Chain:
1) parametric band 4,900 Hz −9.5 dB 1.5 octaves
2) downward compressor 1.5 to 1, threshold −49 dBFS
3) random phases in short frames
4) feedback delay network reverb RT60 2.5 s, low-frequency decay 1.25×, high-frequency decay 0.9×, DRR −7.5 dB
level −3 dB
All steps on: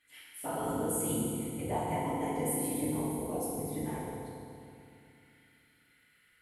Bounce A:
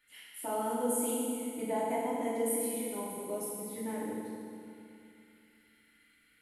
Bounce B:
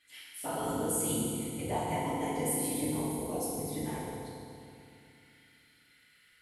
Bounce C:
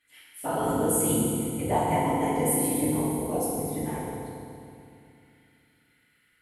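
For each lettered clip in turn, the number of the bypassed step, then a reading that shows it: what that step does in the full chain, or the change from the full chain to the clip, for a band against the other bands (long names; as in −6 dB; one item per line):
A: 3, 125 Hz band −14.5 dB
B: 1, 4 kHz band +5.5 dB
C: 2, average gain reduction 6.0 dB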